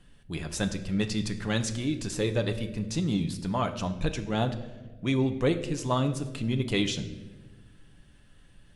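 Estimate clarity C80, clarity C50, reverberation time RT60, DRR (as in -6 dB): 13.5 dB, 12.0 dB, 1.4 s, 6.0 dB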